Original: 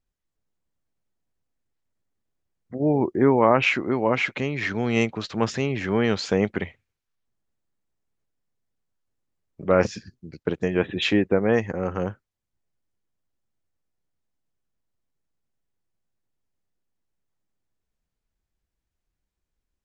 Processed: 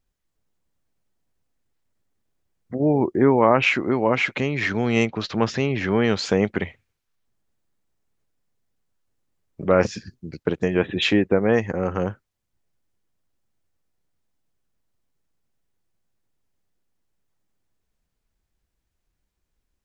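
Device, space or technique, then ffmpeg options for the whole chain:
parallel compression: -filter_complex "[0:a]asplit=2[s0][s1];[s1]acompressor=threshold=0.0355:ratio=6,volume=0.841[s2];[s0][s2]amix=inputs=2:normalize=0,asettb=1/sr,asplit=3[s3][s4][s5];[s3]atrim=end=5.054[s6];[s4]atrim=start=5.05:end=6.02,asetpts=PTS-STARTPTS,afade=t=in:d=0.004:c=qsin,afade=t=out:st=0.966:d=0.004:c=qsin,lowpass=f=6300:w=0.5412,lowpass=f=6300:w=1.3066[s7];[s5]atrim=start=6.016[s8];[s6][s7]acrossfade=d=0.004:c1=hsin:c2=qsin[s9];[s9][s8]acrossfade=d=0.004:c1=qsin:c2=hsin"

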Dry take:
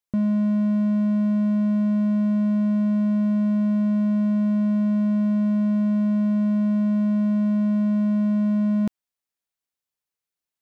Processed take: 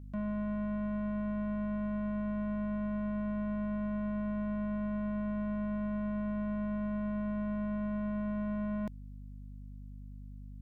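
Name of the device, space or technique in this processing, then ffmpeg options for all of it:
valve amplifier with mains hum: -af "aeval=exprs='(tanh(50.1*val(0)+0.1)-tanh(0.1))/50.1':c=same,aeval=exprs='val(0)+0.00562*(sin(2*PI*50*n/s)+sin(2*PI*2*50*n/s)/2+sin(2*PI*3*50*n/s)/3+sin(2*PI*4*50*n/s)/4+sin(2*PI*5*50*n/s)/5)':c=same"

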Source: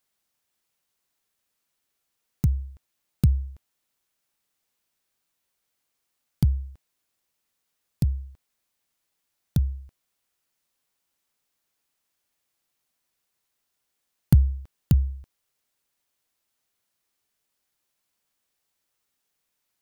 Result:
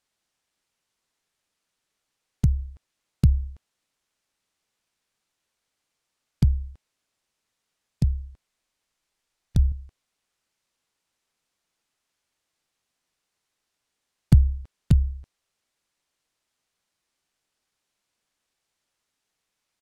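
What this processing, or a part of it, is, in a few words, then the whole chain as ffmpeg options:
octave pedal: -filter_complex "[0:a]lowpass=8800,asettb=1/sr,asplit=3[s0][s1][s2];[s0]atrim=end=8.114[s3];[s1]atrim=start=8.11:end=9.72,asetpts=PTS-STARTPTS,afade=t=in:d=0.004:c=qsin,afade=t=out:st=1.606:d=0.004:c=qsin,asubboost=boost=6.5:cutoff=61[s4];[s2]atrim=start=9.716[s5];[s3][s4]acrossfade=d=0.004:c1=hsin:c2=qsin[s6];[s6][s5]acrossfade=d=0.004:c1=qsin:c2=hsin,asplit=2[s7][s8];[s8]asetrate=22050,aresample=44100,atempo=2,volume=0.355[s9];[s7][s9]amix=inputs=2:normalize=0,volume=1.12"

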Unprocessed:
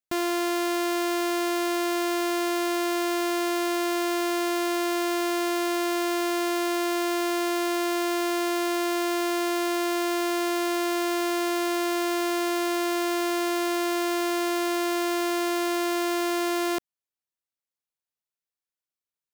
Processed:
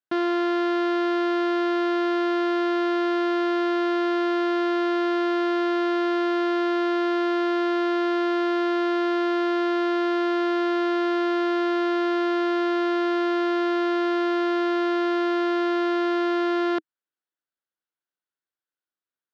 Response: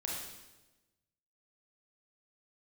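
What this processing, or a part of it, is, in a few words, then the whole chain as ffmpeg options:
kitchen radio: -af "highpass=180,equalizer=f=320:t=q:w=4:g=6,equalizer=f=1500:t=q:w=4:g=8,equalizer=f=2400:t=q:w=4:g=-6,lowpass=f=3900:w=0.5412,lowpass=f=3900:w=1.3066"

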